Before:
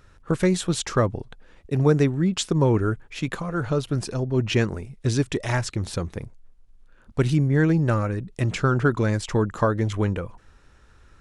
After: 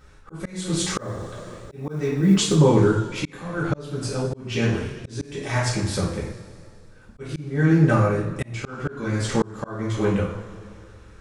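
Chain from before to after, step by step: two-slope reverb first 0.5 s, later 2.5 s, from -18 dB, DRR -6 dB; slow attack 483 ms; 0.81–2.56 s: companded quantiser 8-bit; trim -2 dB

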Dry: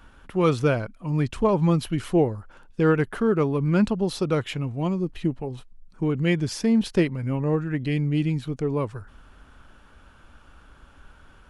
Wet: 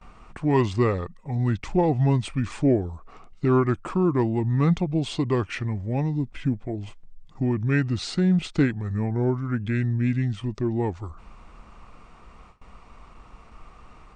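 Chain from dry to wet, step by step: in parallel at -2 dB: compression, threshold -35 dBFS, peak gain reduction 19 dB; on the sum: low-pass 10 kHz 12 dB/octave; wide varispeed 0.812×; gate with hold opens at -37 dBFS; trim -1.5 dB

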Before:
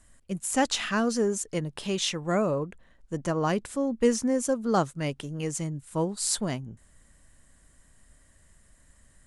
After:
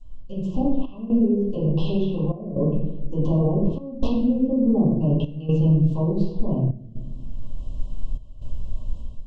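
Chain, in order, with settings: hum notches 60/120/180 Hz; low-pass that closes with the level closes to 370 Hz, closed at -22 dBFS; integer overflow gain 15.5 dB; low-pass 5.8 kHz 24 dB/octave; bass shelf 160 Hz +12 dB; peak limiter -22 dBFS, peak gain reduction 10 dB; Chebyshev band-stop 1.1–2.7 kHz, order 5; reverberation RT60 0.95 s, pre-delay 4 ms, DRR -10 dB; level rider gain up to 14 dB; trance gate "xxxxxxx..xxx" 123 bpm -12 dB; trim -8 dB

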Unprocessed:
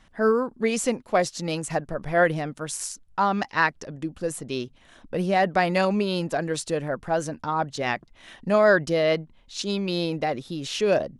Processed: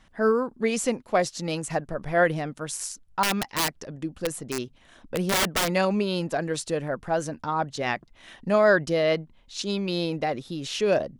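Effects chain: 3.23–5.68 s: integer overflow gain 17 dB; trim -1 dB

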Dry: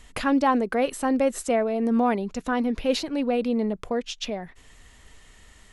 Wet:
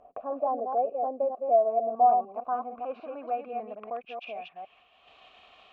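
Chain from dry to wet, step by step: chunks repeated in reverse 150 ms, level -4.5 dB; low-pass sweep 610 Hz -> 3.7 kHz, 1.37–5.13 s; vowel filter a; expander -58 dBFS; upward compressor, threshold -35 dBFS

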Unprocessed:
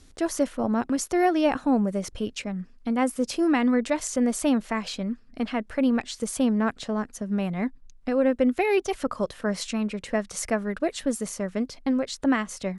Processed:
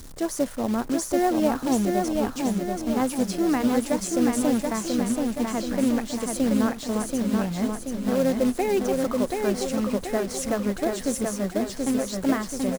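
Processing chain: jump at every zero crossing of -36 dBFS; peaking EQ 2.7 kHz -8.5 dB 1.3 oct; short-mantissa float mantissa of 2-bit; on a send: feedback delay 731 ms, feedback 53%, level -3.5 dB; on the sum: AM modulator 130 Hz, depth 15%

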